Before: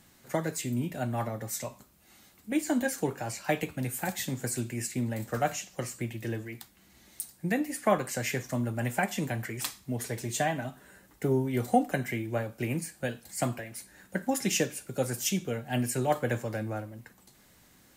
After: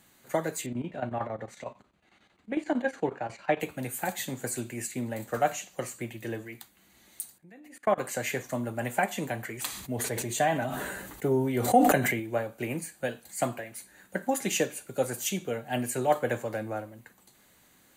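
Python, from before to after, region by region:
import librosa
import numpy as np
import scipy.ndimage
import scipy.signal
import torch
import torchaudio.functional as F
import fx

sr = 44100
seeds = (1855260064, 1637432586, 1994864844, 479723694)

y = fx.chain(x, sr, fx.lowpass(hz=3200.0, slope=12),
    fx.chopper(hz=11.0, depth_pct=65, duty_pct=75), at=(0.66, 3.6))
y = fx.chain(y, sr, fx.lowpass(hz=3700.0, slope=6),
    fx.level_steps(step_db=24), at=(7.38, 7.98))
y = fx.chain(y, sr, fx.low_shelf(hz=150.0, db=4.0),
    fx.sustainer(db_per_s=26.0), at=(9.66, 12.2))
y = fx.low_shelf(y, sr, hz=190.0, db=-8.0)
y = fx.notch(y, sr, hz=5300.0, q=5.1)
y = fx.dynamic_eq(y, sr, hz=630.0, q=0.74, threshold_db=-43.0, ratio=4.0, max_db=4)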